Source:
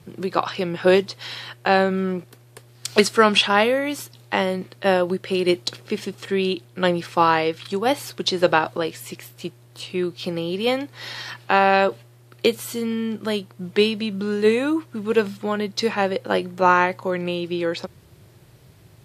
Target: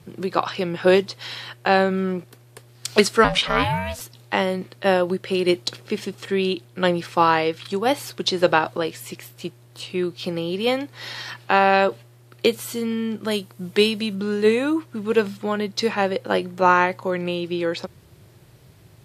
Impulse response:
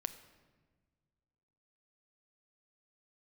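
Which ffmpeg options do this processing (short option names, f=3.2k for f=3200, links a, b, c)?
-filter_complex "[0:a]asettb=1/sr,asplit=3[a][b][c];[a]atrim=end=3.244[d];[b]atrim=start=3.24:end=4.01,asetpts=PTS-STARTPTS,afade=t=in:d=0.004:c=qsin,afade=t=out:st=0.766:d=0.004:c=qsin,aeval=exprs='val(0)*sin(2*PI*370*n/s)':c=same[e];[c]atrim=start=4.006[f];[d][e]acrossfade=d=0.004:c1=hsin:c2=qsin[g];[g][f]acrossfade=d=0.004:c1=qsin:c2=hsin,asettb=1/sr,asplit=3[h][i][j];[h]atrim=end=13.314[k];[i]atrim=start=13.31:end=14.15,asetpts=PTS-STARTPTS,afade=t=in:d=0.004:c=qsin,afade=t=out:st=0.836:d=0.004:c=qsin,highshelf=f=6.1k:g=9.5[l];[j]atrim=start=14.146[m];[k][l]acrossfade=d=0.004:c1=hsin:c2=qsin[n];[n][m]acrossfade=d=0.004:c1=qsin:c2=hsin"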